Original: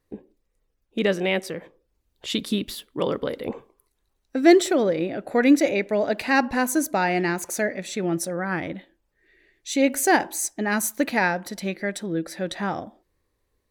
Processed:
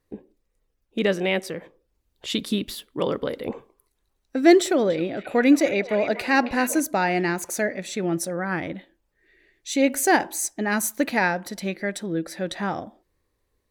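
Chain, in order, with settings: 4.63–6.8 delay with a stepping band-pass 0.269 s, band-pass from 2800 Hz, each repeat -0.7 oct, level -6.5 dB

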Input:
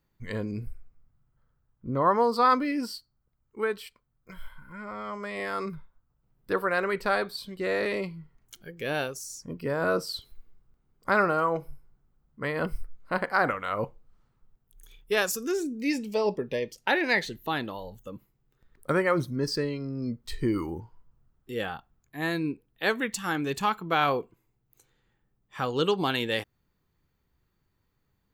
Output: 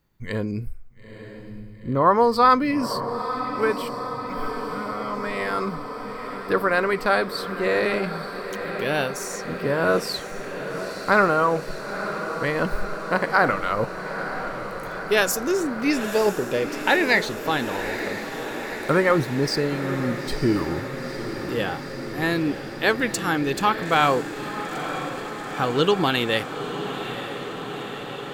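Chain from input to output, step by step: diffused feedback echo 0.927 s, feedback 76%, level -10 dB; gain +5.5 dB

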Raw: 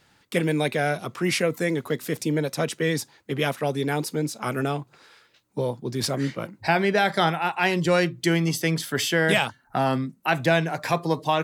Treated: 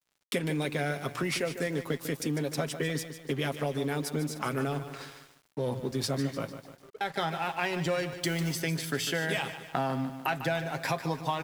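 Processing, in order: notches 60/120 Hz; comb 7.4 ms, depth 42%; 4.78–5.81 transient shaper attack -9 dB, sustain +8 dB; compressor 4:1, threshold -34 dBFS, peak gain reduction 16.5 dB; 6.53–7.01 auto-wah 470–1600 Hz, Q 21, down, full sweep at -33.5 dBFS; crossover distortion -53 dBFS; 8.12–8.56 requantised 8-bit, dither none; lo-fi delay 0.149 s, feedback 55%, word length 9-bit, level -10.5 dB; gain +4.5 dB

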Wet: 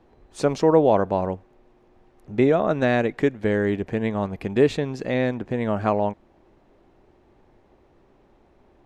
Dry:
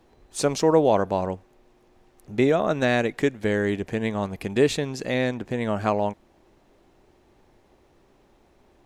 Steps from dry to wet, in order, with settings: LPF 1900 Hz 6 dB/oct; gain +2 dB

